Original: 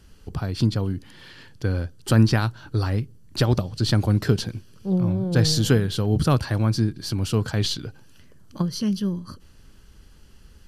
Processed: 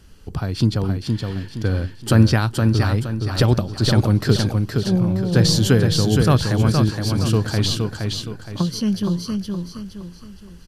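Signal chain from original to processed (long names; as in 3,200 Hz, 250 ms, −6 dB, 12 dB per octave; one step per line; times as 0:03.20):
repeating echo 468 ms, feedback 38%, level −4.5 dB
level +3 dB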